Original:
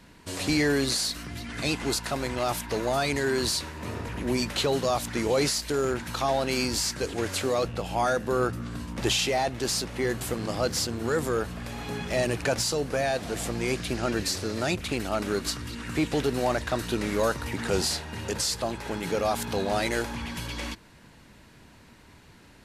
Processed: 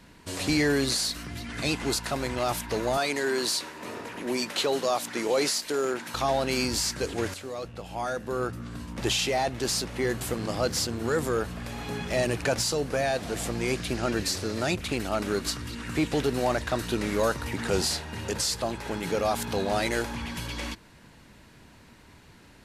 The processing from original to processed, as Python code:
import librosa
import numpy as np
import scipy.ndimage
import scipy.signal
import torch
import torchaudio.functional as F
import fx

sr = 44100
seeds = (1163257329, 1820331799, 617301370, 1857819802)

y = fx.highpass(x, sr, hz=270.0, slope=12, at=(2.97, 6.14))
y = fx.edit(y, sr, fx.fade_in_from(start_s=7.34, length_s=2.19, floor_db=-12.0), tone=tone)